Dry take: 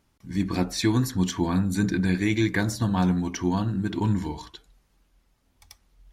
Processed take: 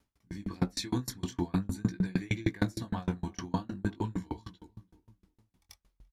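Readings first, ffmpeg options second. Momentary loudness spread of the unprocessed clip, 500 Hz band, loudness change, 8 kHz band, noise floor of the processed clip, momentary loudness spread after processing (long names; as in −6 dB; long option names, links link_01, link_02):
5 LU, −9.0 dB, −9.0 dB, −9.0 dB, −81 dBFS, 11 LU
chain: -filter_complex "[0:a]flanger=delay=16.5:depth=8:speed=0.46,asplit=2[link_01][link_02];[link_02]adelay=339,lowpass=frequency=920:poles=1,volume=-15.5dB,asplit=2[link_03][link_04];[link_04]adelay=339,lowpass=frequency=920:poles=1,volume=0.41,asplit=2[link_05][link_06];[link_06]adelay=339,lowpass=frequency=920:poles=1,volume=0.41,asplit=2[link_07][link_08];[link_08]adelay=339,lowpass=frequency=920:poles=1,volume=0.41[link_09];[link_03][link_05][link_07][link_09]amix=inputs=4:normalize=0[link_10];[link_01][link_10]amix=inputs=2:normalize=0,aeval=exprs='val(0)*pow(10,-33*if(lt(mod(6.5*n/s,1),2*abs(6.5)/1000),1-mod(6.5*n/s,1)/(2*abs(6.5)/1000),(mod(6.5*n/s,1)-2*abs(6.5)/1000)/(1-2*abs(6.5)/1000))/20)':channel_layout=same,volume=3dB"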